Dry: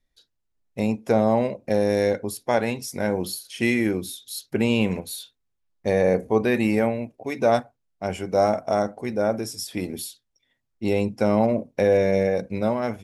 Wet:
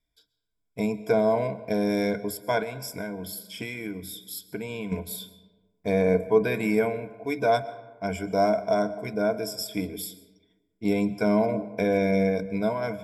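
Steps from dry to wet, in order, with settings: ripple EQ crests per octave 1.7, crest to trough 15 dB; 2.62–4.92 compressor, threshold -26 dBFS, peak gain reduction 10.5 dB; reverb RT60 1.3 s, pre-delay 85 ms, DRR 16 dB; gain -5 dB

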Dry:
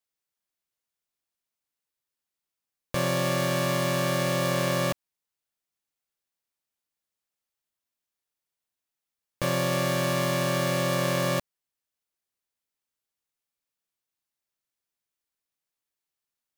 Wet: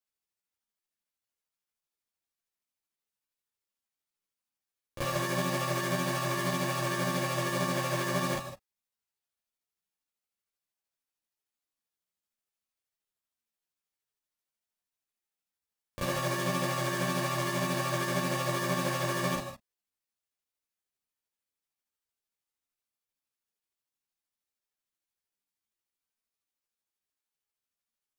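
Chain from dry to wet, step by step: non-linear reverb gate 0.11 s rising, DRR 8.5 dB; granular stretch 1.7×, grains 0.154 s; ensemble effect

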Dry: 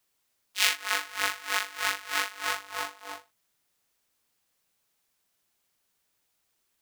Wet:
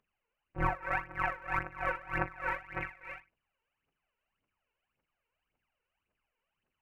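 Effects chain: inverted band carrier 3000 Hz; bell 1900 Hz -4.5 dB 0.27 oct; phaser 1.8 Hz, delay 2.3 ms, feedback 71%; gain -5 dB

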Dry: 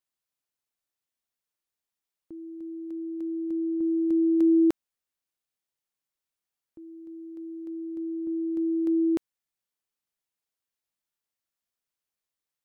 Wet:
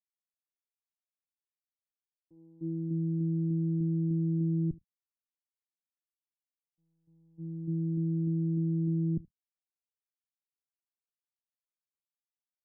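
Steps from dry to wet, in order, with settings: octaver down 1 oct, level -2 dB; gate -36 dBFS, range -18 dB; bell 94 Hz +5.5 dB 1.1 oct; compressor 12:1, threshold -30 dBFS, peak gain reduction 15 dB; crossover distortion -57 dBFS; low-pass sweep 540 Hz -> 200 Hz, 1.55–2.99; on a send: echo 75 ms -23.5 dB; on the sum: gain +3 dB

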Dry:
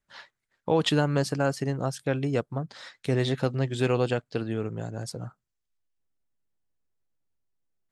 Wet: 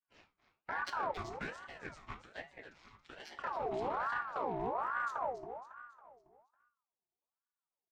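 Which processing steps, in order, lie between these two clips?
chord vocoder major triad, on B2; 1.11–3.39 HPF 700 Hz 24 dB/oct; limiter -28.5 dBFS, peak gain reduction 15 dB; added harmonics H 7 -25 dB, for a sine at -28.5 dBFS; feedback echo 0.276 s, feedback 47%, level -10 dB; reverb RT60 0.35 s, pre-delay 5 ms, DRR 8 dB; ring modulator with a swept carrier 920 Hz, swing 45%, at 1.2 Hz

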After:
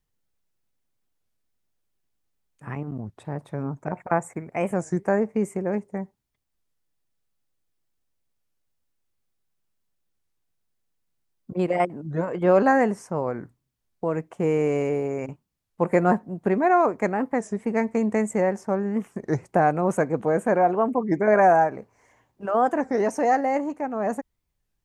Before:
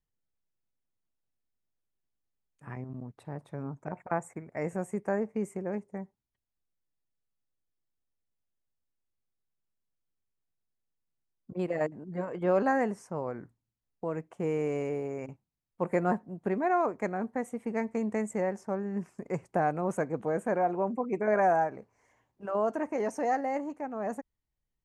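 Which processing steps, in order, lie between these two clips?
record warp 33 1/3 rpm, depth 250 cents; gain +8 dB

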